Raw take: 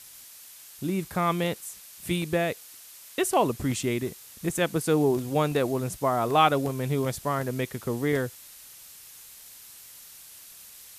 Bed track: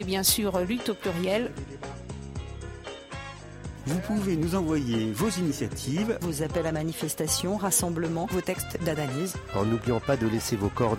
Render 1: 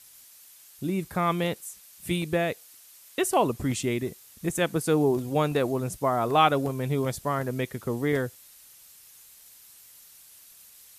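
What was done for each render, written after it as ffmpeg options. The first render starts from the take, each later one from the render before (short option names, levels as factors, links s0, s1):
-af "afftdn=nr=6:nf=-48"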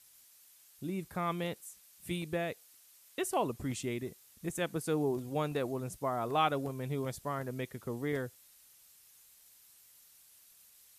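-af "volume=0.355"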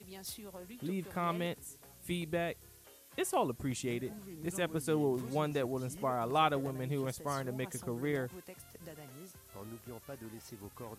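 -filter_complex "[1:a]volume=0.0794[s0];[0:a][s0]amix=inputs=2:normalize=0"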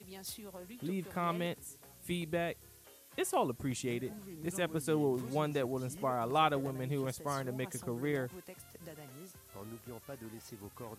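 -af "highpass=55"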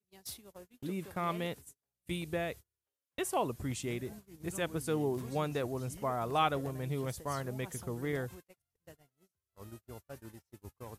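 -af "agate=range=0.0158:threshold=0.00501:ratio=16:detection=peak,asubboost=boost=2.5:cutoff=110"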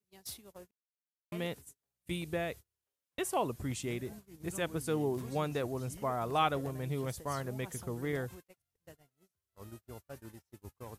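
-filter_complex "[0:a]asplit=3[s0][s1][s2];[s0]atrim=end=0.71,asetpts=PTS-STARTPTS,afade=t=out:st=0.706:d=0.004:c=hsin[s3];[s1]atrim=start=0.71:end=1.32,asetpts=PTS-STARTPTS,volume=0[s4];[s2]atrim=start=1.32,asetpts=PTS-STARTPTS,afade=t=in:d=0.004:c=hsin[s5];[s3][s4][s5]concat=n=3:v=0:a=1"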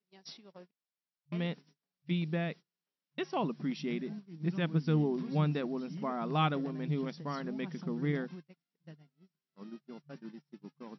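-af "afftfilt=real='re*between(b*sr/4096,150,5800)':imag='im*between(b*sr/4096,150,5800)':win_size=4096:overlap=0.75,asubboost=boost=6.5:cutoff=200"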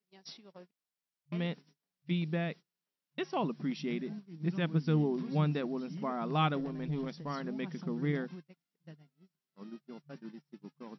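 -filter_complex "[0:a]asettb=1/sr,asplit=3[s0][s1][s2];[s0]atrim=end=6.604[s3];[s1]atrim=start=6.6:end=7.3,asetpts=PTS-STARTPTS,afade=t=in:d=0.004:c=qsin,afade=t=out:st=0.696:d=0.004:c=qsin,aeval=exprs='(tanh(25.1*val(0)+0.15)-tanh(0.15))/25.1':c=same[s4];[s2]atrim=start=7.296[s5];[s3][s4]acrossfade=d=0.004:c1=hsin:c2=qsin[s6];[s6][s5]acrossfade=d=0.004:c1=qsin:c2=hsin"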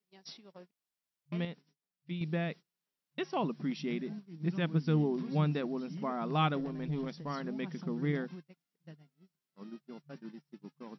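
-filter_complex "[0:a]asplit=3[s0][s1][s2];[s0]atrim=end=1.452[s3];[s1]atrim=start=1.448:end=2.212,asetpts=PTS-STARTPTS,volume=0.473[s4];[s2]atrim=start=2.208[s5];[s3][s4]acrossfade=d=0.004:c1=hsin:c2=hsin[s6];[s6][s5]acrossfade=d=0.004:c1=hsin:c2=hsin"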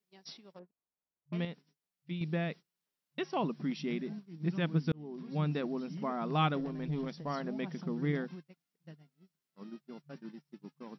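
-filter_complex "[0:a]asettb=1/sr,asplit=3[s0][s1][s2];[s0]atrim=end=0.594[s3];[s1]atrim=start=0.59:end=1.33,asetpts=PTS-STARTPTS,afade=t=in:d=0.004:c=qsin,afade=t=out:st=0.736:d=0.004:c=qsin,lowpass=1000[s4];[s2]atrim=start=1.326[s5];[s3][s4]acrossfade=d=0.004:c1=hsin:c2=qsin[s6];[s6][s5]acrossfade=d=0.004:c1=qsin:c2=hsin,asettb=1/sr,asplit=3[s7][s8][s9];[s7]atrim=end=7.194[s10];[s8]atrim=start=7.19:end=7.83,asetpts=PTS-STARTPTS,afade=t=in:d=0.004:c=qsin,afade=t=out:st=0.636:d=0.004:c=qsin,equalizer=f=670:w=2.5:g=6[s11];[s9]atrim=start=7.826[s12];[s10][s11]acrossfade=d=0.004:c1=hsin:c2=qsin[s13];[s13][s12]acrossfade=d=0.004:c1=qsin:c2=hsin,asplit=2[s14][s15];[s14]atrim=end=4.92,asetpts=PTS-STARTPTS,afade=t=out:st=4.916:d=0.004:c=hsin[s16];[s15]atrim=start=4.92,asetpts=PTS-STARTPTS,afade=t=in:d=0.69[s17];[s16][s17]concat=n=2:v=0:a=1"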